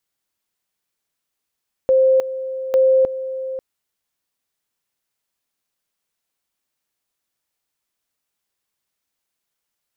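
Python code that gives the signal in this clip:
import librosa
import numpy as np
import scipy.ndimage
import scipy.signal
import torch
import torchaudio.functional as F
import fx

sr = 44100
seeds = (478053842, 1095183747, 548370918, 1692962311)

y = fx.two_level_tone(sr, hz=525.0, level_db=-10.5, drop_db=13.0, high_s=0.31, low_s=0.54, rounds=2)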